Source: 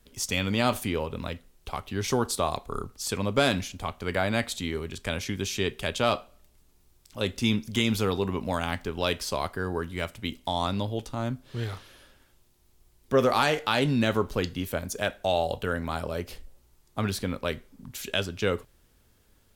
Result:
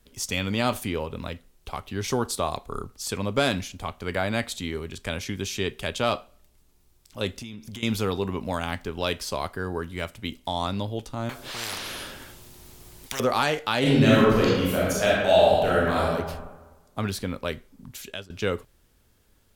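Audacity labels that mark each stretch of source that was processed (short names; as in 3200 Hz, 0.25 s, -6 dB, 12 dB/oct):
7.360000	7.830000	compressor 12:1, threshold -34 dBFS
11.290000	13.200000	spectral compressor 10:1
13.790000	16.050000	reverb throw, RT60 1.3 s, DRR -7 dB
17.900000	18.300000	fade out, to -22.5 dB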